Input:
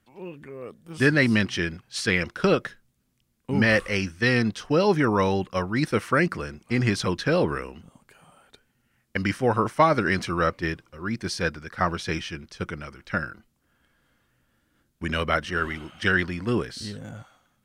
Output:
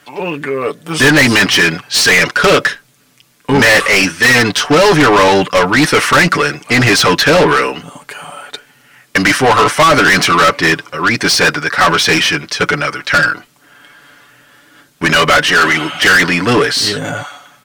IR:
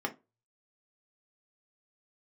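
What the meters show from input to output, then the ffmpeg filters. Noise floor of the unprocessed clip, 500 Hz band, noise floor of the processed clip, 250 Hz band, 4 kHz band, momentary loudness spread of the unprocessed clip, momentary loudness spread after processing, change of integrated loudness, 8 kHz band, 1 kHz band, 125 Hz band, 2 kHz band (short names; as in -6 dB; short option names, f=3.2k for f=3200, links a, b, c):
-71 dBFS, +12.5 dB, -51 dBFS, +10.5 dB, +21.0 dB, 16 LU, 11 LU, +14.5 dB, +22.5 dB, +15.5 dB, +8.5 dB, +17.0 dB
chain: -filter_complex "[0:a]aecho=1:1:6.9:0.67,asplit=2[a][b];[b]highpass=f=720:p=1,volume=31dB,asoftclip=type=tanh:threshold=-2.5dB[c];[a][c]amix=inputs=2:normalize=0,lowpass=f=7k:p=1,volume=-6dB,volume=1.5dB"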